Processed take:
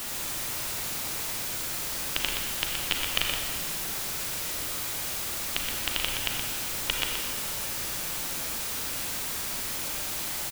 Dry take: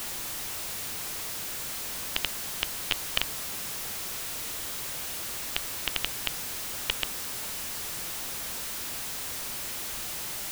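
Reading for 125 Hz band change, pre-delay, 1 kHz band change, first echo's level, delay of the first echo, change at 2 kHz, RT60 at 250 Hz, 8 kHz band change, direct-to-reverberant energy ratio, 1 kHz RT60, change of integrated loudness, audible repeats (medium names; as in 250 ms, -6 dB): +4.5 dB, 33 ms, +3.0 dB, -6.0 dB, 122 ms, +3.0 dB, 2.1 s, +2.5 dB, -0.5 dB, 1.6 s, +2.5 dB, 1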